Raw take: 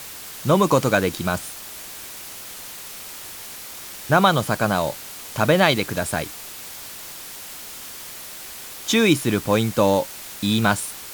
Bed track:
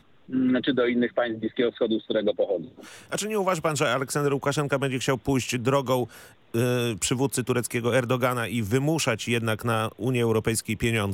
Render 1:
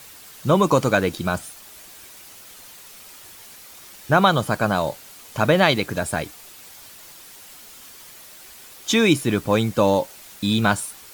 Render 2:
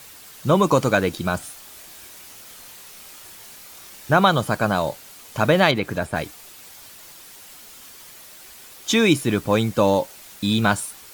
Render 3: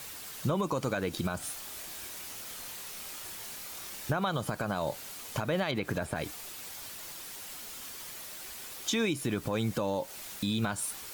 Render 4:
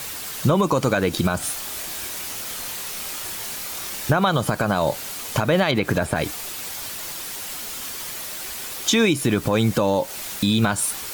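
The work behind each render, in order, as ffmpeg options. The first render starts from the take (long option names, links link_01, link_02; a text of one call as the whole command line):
ffmpeg -i in.wav -af "afftdn=noise_reduction=8:noise_floor=-37" out.wav
ffmpeg -i in.wav -filter_complex "[0:a]asettb=1/sr,asplit=3[link_01][link_02][link_03];[link_01]atrim=end=1.384[link_04];[link_02]atrim=start=1.38:end=4.13,asetpts=PTS-STARTPTS,afade=type=in:duration=0.004:curve=qsin,afade=type=out:start_time=2.746:duration=0.004:curve=qsin,asplit=2[link_05][link_06];[link_06]adelay=28,volume=-6dB[link_07];[link_05][link_07]amix=inputs=2:normalize=0,atrim=end_sample=121275[link_08];[link_03]atrim=start=4.126[link_09];[link_04][link_08]acrossfade=duration=0.004:curve1=hsin:curve2=qsin[link_10];[link_10][link_09]acrossfade=duration=0.004:curve1=qsin:curve2=hsin,asettb=1/sr,asplit=3[link_11][link_12][link_13];[link_11]atrim=end=5.714[link_14];[link_12]atrim=start=5.71:end=6.16,asetpts=PTS-STARTPTS,afade=type=in:duration=0.004:curve=qsin,afade=type=out:start_time=0.446:duration=0.004:curve=qsin,acrossover=split=3100[link_15][link_16];[link_16]acompressor=threshold=-42dB:ratio=4:attack=1:release=60[link_17];[link_15][link_17]amix=inputs=2:normalize=0[link_18];[link_13]atrim=start=6.156[link_19];[link_14][link_18]acrossfade=duration=0.004:curve1=hsin:curve2=qsin[link_20];[link_20][link_19]acrossfade=duration=0.004:curve1=qsin:curve2=hsin" out.wav
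ffmpeg -i in.wav -af "acompressor=threshold=-23dB:ratio=6,alimiter=limit=-20.5dB:level=0:latency=1:release=97" out.wav
ffmpeg -i in.wav -af "volume=11.5dB" out.wav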